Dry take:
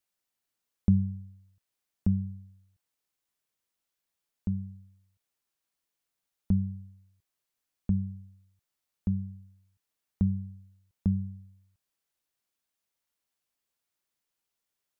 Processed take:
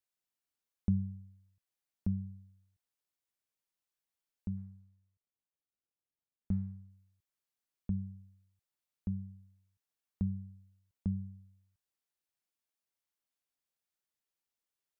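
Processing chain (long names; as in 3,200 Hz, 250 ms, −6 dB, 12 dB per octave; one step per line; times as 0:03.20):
0:04.57–0:06.90: running median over 41 samples
level −7.5 dB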